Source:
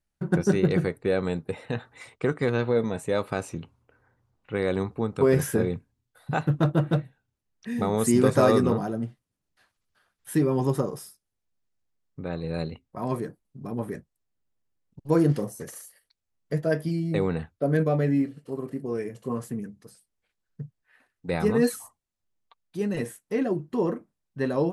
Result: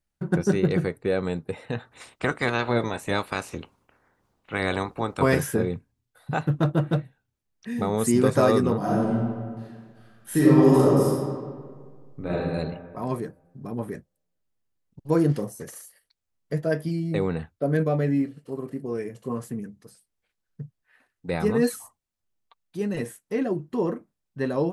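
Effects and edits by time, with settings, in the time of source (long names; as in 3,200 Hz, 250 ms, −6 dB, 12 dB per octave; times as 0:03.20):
0:01.91–0:05.38: ceiling on every frequency bin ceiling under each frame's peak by 16 dB
0:08.77–0:12.33: thrown reverb, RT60 1.8 s, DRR −7.5 dB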